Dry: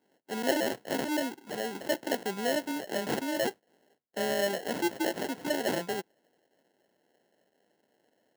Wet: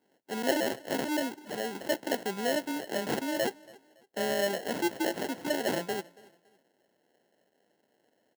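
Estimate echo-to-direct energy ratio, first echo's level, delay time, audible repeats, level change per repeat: −22.5 dB, −23.0 dB, 281 ms, 2, −9.5 dB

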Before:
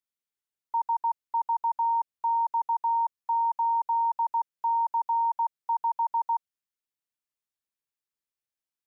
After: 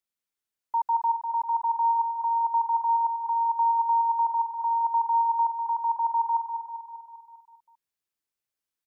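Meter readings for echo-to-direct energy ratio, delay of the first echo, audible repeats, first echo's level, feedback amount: −5.0 dB, 198 ms, 6, −7.0 dB, 58%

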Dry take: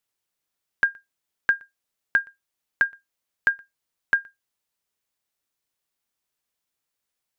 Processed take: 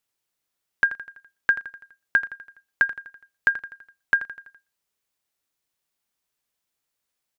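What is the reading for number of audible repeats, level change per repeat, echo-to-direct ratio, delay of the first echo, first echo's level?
4, −5.5 dB, −12.0 dB, 83 ms, −13.5 dB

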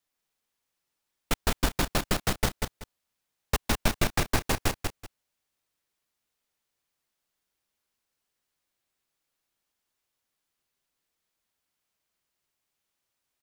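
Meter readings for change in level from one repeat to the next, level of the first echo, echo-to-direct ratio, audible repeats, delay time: −13.5 dB, −4.5 dB, −4.5 dB, 2, 190 ms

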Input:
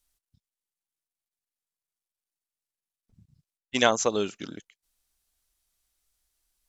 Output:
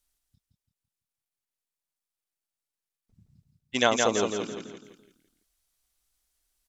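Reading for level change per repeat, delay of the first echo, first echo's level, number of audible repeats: −8.0 dB, 168 ms, −4.0 dB, 4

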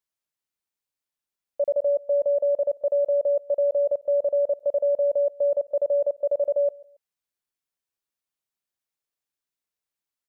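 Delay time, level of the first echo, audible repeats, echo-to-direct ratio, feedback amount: 139 ms, −23.0 dB, 2, −22.5 dB, 30%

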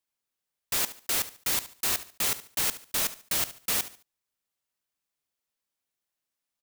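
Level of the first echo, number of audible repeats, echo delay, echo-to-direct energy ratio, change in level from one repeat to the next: −15.0 dB, 2, 72 ms, −14.5 dB, −10.0 dB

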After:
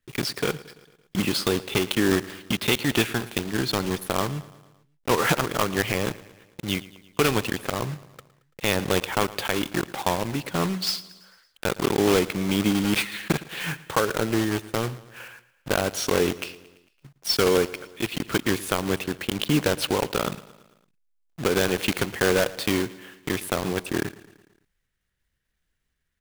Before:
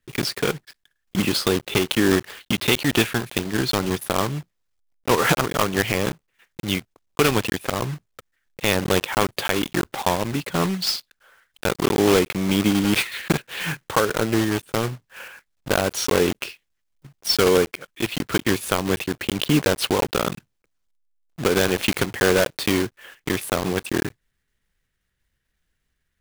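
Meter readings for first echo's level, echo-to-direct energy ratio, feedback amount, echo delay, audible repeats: −19.0 dB, −17.5 dB, 57%, 112 ms, 4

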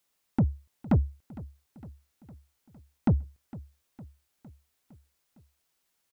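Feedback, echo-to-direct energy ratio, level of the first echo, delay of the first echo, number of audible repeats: 60%, −17.0 dB, −19.0 dB, 458 ms, 4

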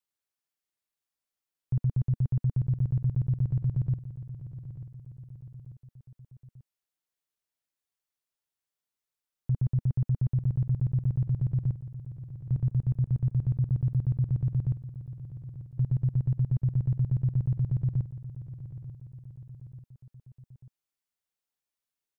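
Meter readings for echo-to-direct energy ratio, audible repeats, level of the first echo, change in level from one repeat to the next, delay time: −12.0 dB, 3, −13.5 dB, −5.5 dB, 890 ms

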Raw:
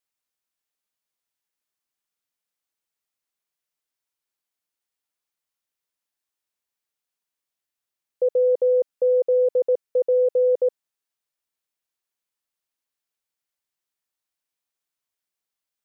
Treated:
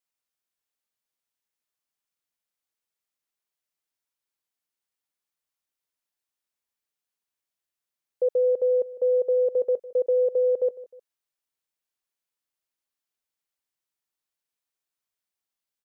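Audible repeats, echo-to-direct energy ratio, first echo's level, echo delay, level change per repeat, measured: 2, −17.5 dB, −18.0 dB, 154 ms, −7.5 dB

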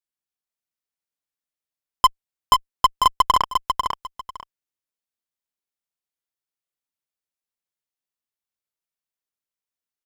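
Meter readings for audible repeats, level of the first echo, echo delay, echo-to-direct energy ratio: 2, −5.0 dB, 496 ms, −5.0 dB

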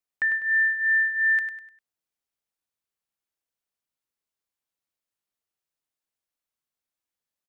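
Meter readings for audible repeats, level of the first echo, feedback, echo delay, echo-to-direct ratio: 4, −8.5 dB, 37%, 100 ms, −8.0 dB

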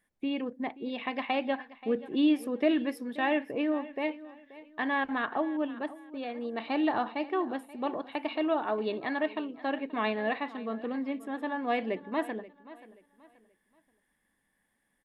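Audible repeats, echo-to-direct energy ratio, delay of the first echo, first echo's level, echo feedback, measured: 2, −17.5 dB, 530 ms, −18.0 dB, 32%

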